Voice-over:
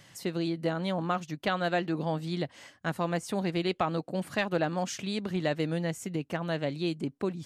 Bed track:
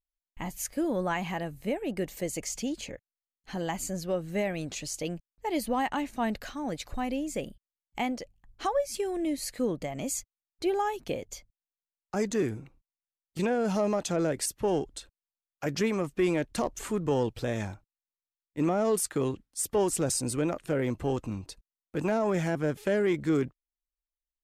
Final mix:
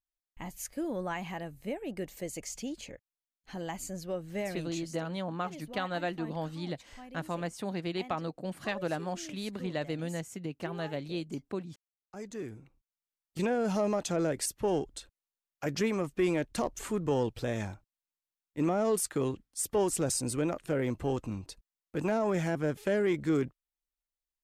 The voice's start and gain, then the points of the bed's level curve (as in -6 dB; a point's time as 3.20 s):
4.30 s, -5.0 dB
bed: 4.74 s -5.5 dB
4.99 s -17 dB
11.95 s -17 dB
13.19 s -2 dB